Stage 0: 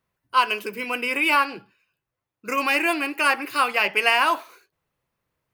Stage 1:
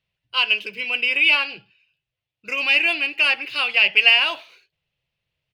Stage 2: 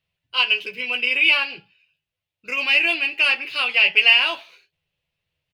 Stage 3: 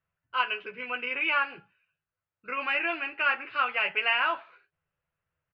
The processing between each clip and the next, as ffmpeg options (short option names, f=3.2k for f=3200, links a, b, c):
-af "firequalizer=gain_entry='entry(150,0);entry(240,-11);entry(620,-4);entry(1100,-12);entry(2800,10);entry(7100,-9);entry(13000,-17)':delay=0.05:min_phase=1"
-af "aecho=1:1:12|36:0.531|0.141,volume=-1dB"
-af "lowpass=f=1.4k:t=q:w=3.5,volume=-5dB"